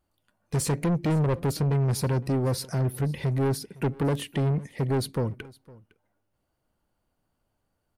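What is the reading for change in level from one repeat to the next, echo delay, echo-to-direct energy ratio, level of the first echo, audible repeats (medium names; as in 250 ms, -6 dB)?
no regular repeats, 509 ms, -22.5 dB, -22.5 dB, 1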